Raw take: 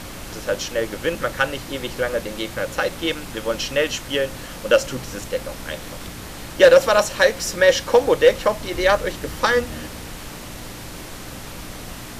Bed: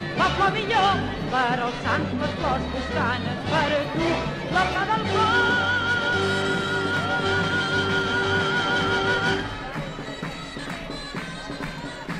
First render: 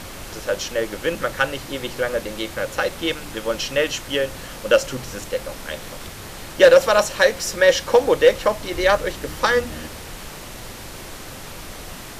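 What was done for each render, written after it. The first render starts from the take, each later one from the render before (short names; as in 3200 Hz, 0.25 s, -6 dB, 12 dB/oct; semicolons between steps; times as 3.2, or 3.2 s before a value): de-hum 60 Hz, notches 5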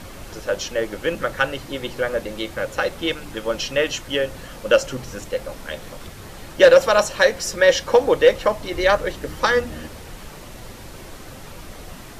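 denoiser 6 dB, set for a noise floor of -36 dBFS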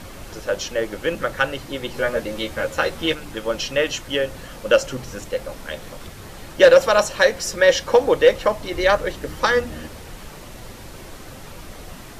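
1.93–3.15 doubler 13 ms -2.5 dB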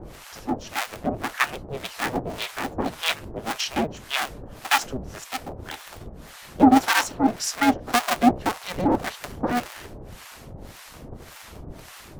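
cycle switcher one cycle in 2, inverted; harmonic tremolo 1.8 Hz, depth 100%, crossover 820 Hz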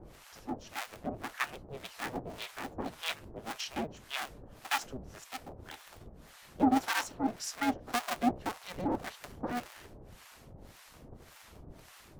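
gain -11.5 dB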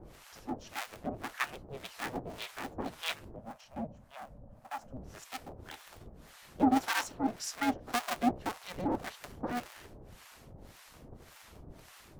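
3.36–4.97 EQ curve 240 Hz 0 dB, 390 Hz -16 dB, 560 Hz 0 dB, 2000 Hz -16 dB, 3400 Hz -21 dB, 9500 Hz -17 dB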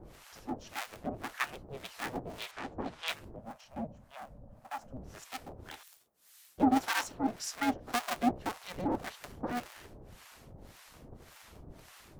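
2.51–3.08 air absorption 78 m; 5.83–6.58 differentiator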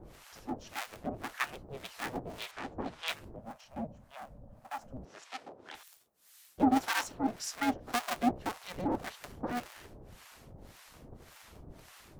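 5.05–5.75 BPF 300–5800 Hz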